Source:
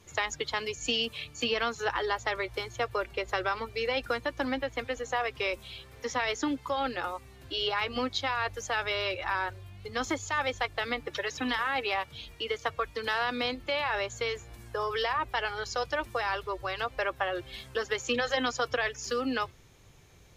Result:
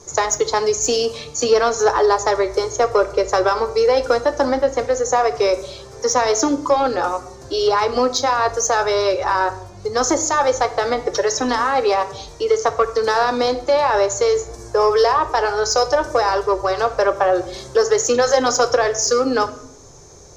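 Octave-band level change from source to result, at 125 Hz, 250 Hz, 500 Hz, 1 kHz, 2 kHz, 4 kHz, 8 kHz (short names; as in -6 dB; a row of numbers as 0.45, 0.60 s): +9.0, +11.0, +17.0, +14.0, +5.5, +7.0, +20.5 dB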